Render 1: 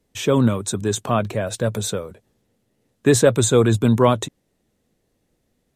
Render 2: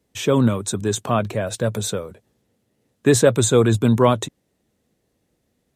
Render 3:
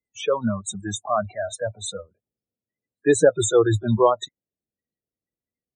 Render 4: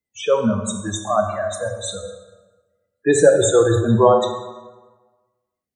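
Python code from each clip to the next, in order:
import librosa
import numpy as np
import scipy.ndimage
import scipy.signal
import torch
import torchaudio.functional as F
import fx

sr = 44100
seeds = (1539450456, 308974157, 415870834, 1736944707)

y1 = scipy.signal.sosfilt(scipy.signal.butter(2, 47.0, 'highpass', fs=sr, output='sos'), x)
y2 = fx.spec_topn(y1, sr, count=32)
y2 = fx.noise_reduce_blind(y2, sr, reduce_db=25)
y3 = fx.rev_plate(y2, sr, seeds[0], rt60_s=1.3, hf_ratio=0.65, predelay_ms=0, drr_db=3.0)
y3 = y3 * librosa.db_to_amplitude(2.0)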